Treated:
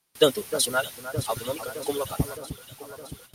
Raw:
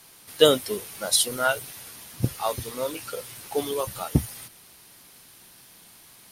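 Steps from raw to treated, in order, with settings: time stretch by phase-locked vocoder 0.53×; echo whose repeats swap between lows and highs 307 ms, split 1.8 kHz, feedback 80%, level -11.5 dB; gate with hold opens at -37 dBFS

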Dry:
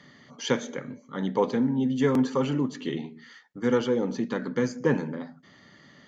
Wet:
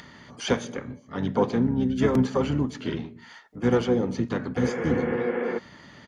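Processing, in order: upward compressor, threshold -42 dBFS; spectral replace 4.62–5.55 s, 350–2900 Hz before; harmony voices -12 st -7 dB, -5 st -9 dB, +7 st -16 dB

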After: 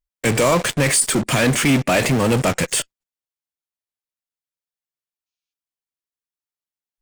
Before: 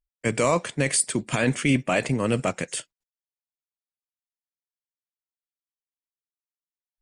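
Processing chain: time-frequency box 5.26–5.53 s, 2.2–6.9 kHz +11 dB; in parallel at -7 dB: fuzz box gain 45 dB, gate -46 dBFS

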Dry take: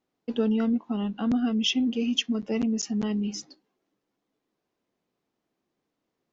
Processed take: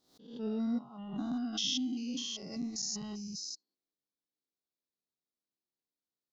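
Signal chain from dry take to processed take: spectrogram pixelated in time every 200 ms; resonant high shelf 3.2 kHz +8 dB, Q 3; spectral noise reduction 15 dB; swell ahead of each attack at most 100 dB/s; trim -5.5 dB

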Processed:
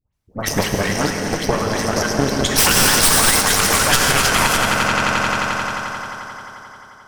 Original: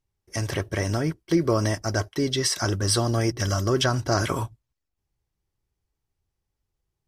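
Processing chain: 2.53–5.12 s: time-frequency box 730–2200 Hz +12 dB; echo with a slow build-up 88 ms, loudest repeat 5, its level -10.5 dB; compression 6:1, threshold -21 dBFS, peak gain reduction 11 dB; 2.43–4.45 s: peaking EQ 12 kHz +14.5 dB 1.5 oct; harmonic-percussive split harmonic -16 dB; peaking EQ 360 Hz -6.5 dB 0.4 oct; phase dispersion highs, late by 133 ms, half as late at 1.4 kHz; Chebyshev shaper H 6 -6 dB, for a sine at -7.5 dBFS; gated-style reverb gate 340 ms flat, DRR 4 dB; loudness maximiser +12 dB; trim -1 dB

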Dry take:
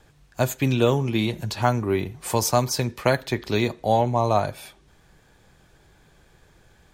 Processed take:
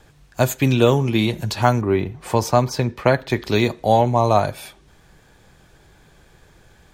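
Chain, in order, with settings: 1.81–3.30 s: peaking EQ 12 kHz -13 dB 2.1 oct; trim +4.5 dB

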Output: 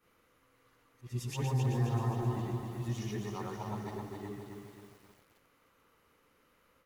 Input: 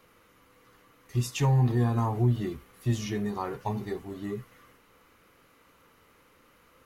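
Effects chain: short-time spectra conjugated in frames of 247 ms; repeats whose band climbs or falls 192 ms, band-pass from 580 Hz, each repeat 1.4 oct, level -6 dB; bit-crushed delay 265 ms, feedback 55%, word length 9-bit, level -4 dB; trim -5.5 dB

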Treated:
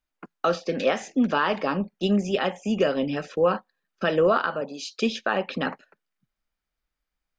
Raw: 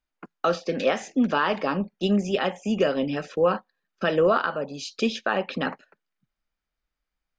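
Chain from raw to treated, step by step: 4.60–5.01 s: high-pass 130 Hz -> 400 Hz 24 dB/octave

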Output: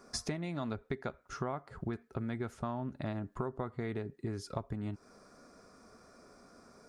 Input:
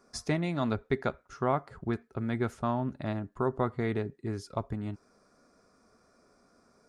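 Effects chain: compression 6:1, threshold -41 dBFS, peak gain reduction 17.5 dB; trim +6 dB

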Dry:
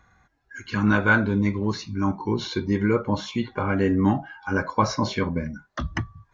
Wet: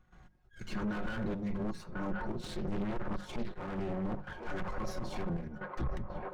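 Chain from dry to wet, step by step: comb filter that takes the minimum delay 5.5 ms; treble shelf 4.5 kHz +7.5 dB; transient shaper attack -9 dB, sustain -5 dB; hum notches 50/100/150/200 Hz; feedback echo behind a band-pass 1044 ms, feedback 44%, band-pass 890 Hz, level -9.5 dB; trance gate ".xxx.xxxxxx.xx." 123 bpm -12 dB; peak limiter -30 dBFS, peak gain reduction 20 dB; tilt EQ -3 dB/octave; saturation -28.5 dBFS, distortion -13 dB; 2.41–4.69 s: loudspeaker Doppler distortion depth 0.7 ms

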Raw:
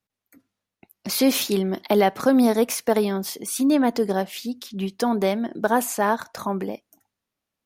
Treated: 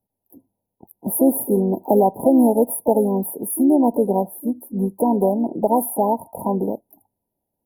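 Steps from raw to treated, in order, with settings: in parallel at +1.5 dB: compression, threshold -25 dBFS, peak gain reduction 11.5 dB; on the sum: harmony voices +4 st -11 dB; brick-wall FIR band-stop 1–9.7 kHz

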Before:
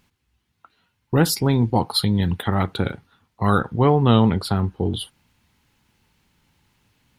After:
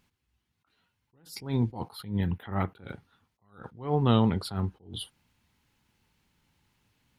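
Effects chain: 1.91–2.79 s: high-order bell 5.8 kHz -10 dB; attacks held to a fixed rise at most 150 dB/s; trim -7 dB

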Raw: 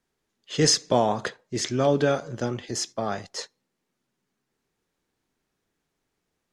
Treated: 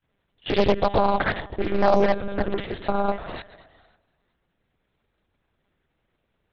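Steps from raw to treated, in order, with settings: on a send: thinning echo 160 ms, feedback 48%, high-pass 160 Hz, level -18 dB; on the sum: granulator 100 ms, grains 20 per s, spray 100 ms; de-hum 149.3 Hz, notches 13; in parallel at -1 dB: level held to a coarse grid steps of 24 dB; on the sum: peak limiter -14.5 dBFS, peak gain reduction 9.5 dB; monotone LPC vocoder at 8 kHz 200 Hz; loudspeaker Doppler distortion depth 0.79 ms; trim +6.5 dB

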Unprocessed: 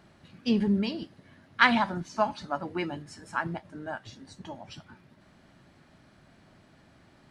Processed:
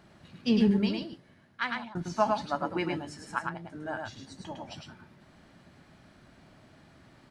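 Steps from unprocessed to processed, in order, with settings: 0.73–1.95 s: fade out; 3.38–3.81 s: compression 5:1, threshold -37 dBFS, peak gain reduction 11 dB; delay 105 ms -3.5 dB

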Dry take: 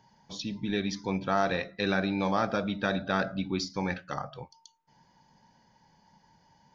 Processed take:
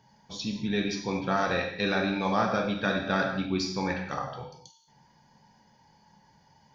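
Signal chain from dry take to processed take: gated-style reverb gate 270 ms falling, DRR 1 dB

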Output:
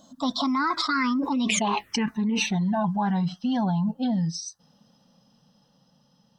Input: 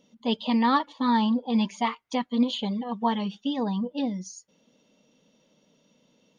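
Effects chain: Doppler pass-by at 1.57 s, 41 m/s, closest 2.2 m; touch-sensitive phaser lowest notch 400 Hz, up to 1.9 kHz, full sweep at -29.5 dBFS; time-frequency box 0.77–1.13 s, 1.2–5.8 kHz +11 dB; level flattener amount 100%; trim +3.5 dB

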